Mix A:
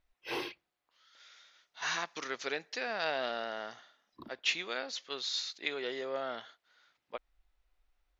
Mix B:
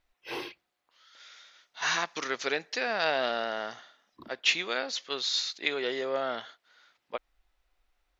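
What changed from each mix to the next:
second voice +6.0 dB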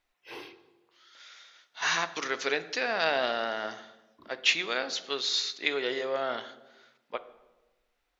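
first voice -7.5 dB; reverb: on, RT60 1.1 s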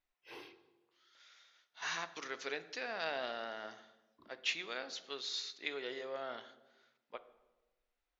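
first voice -8.0 dB; second voice -11.5 dB

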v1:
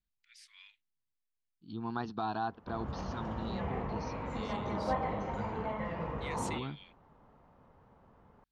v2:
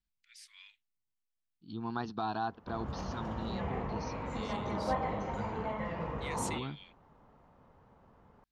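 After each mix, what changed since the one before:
master: add treble shelf 7.3 kHz +9 dB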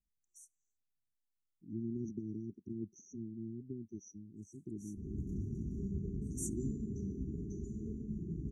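background: entry +2.30 s; master: add brick-wall FIR band-stop 420–5700 Hz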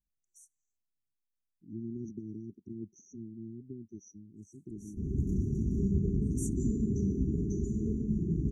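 background +10.0 dB

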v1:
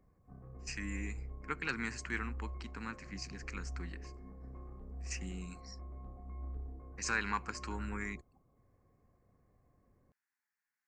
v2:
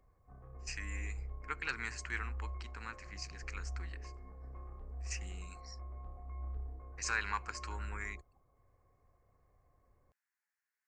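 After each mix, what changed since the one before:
background +4.0 dB; master: add peaking EQ 210 Hz -14 dB 1.8 oct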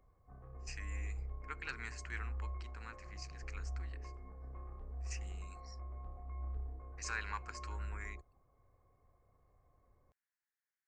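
speech -5.5 dB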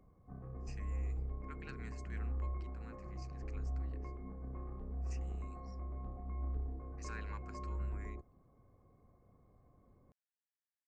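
speech -10.5 dB; master: add peaking EQ 210 Hz +14 dB 1.8 oct

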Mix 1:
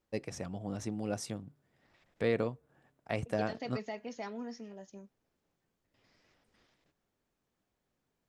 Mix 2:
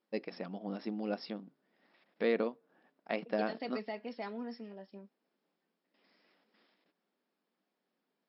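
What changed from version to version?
master: add brick-wall FIR band-pass 170–5500 Hz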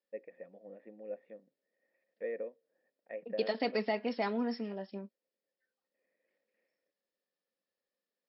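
first voice: add cascade formant filter e; second voice +8.0 dB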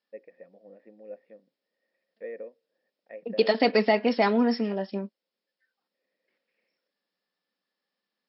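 second voice +11.0 dB

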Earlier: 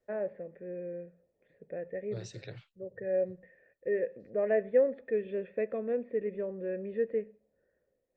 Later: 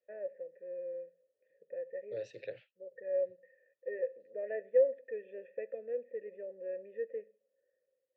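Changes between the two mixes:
second voice +11.0 dB; master: add vowel filter e

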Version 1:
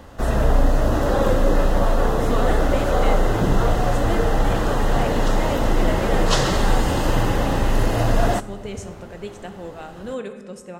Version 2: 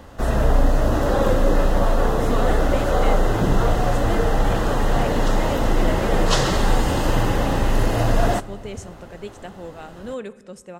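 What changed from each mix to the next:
speech: send -10.0 dB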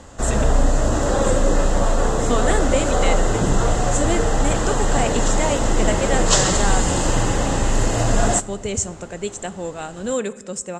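speech +7.5 dB; master: add resonant low-pass 7.5 kHz, resonance Q 6.8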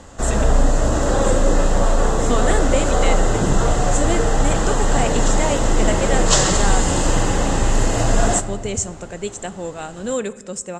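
background: send +9.0 dB

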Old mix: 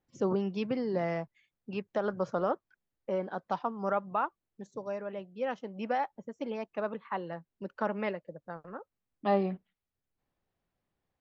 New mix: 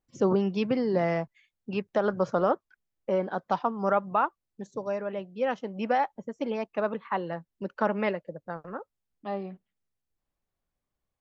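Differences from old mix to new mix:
first voice +5.5 dB; second voice -6.5 dB

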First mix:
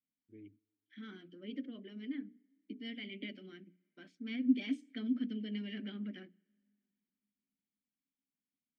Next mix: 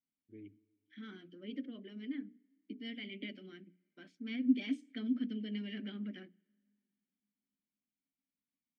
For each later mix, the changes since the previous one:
first voice: send +11.0 dB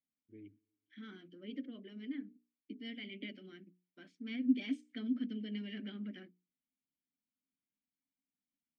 first voice: send -9.0 dB; second voice: send off

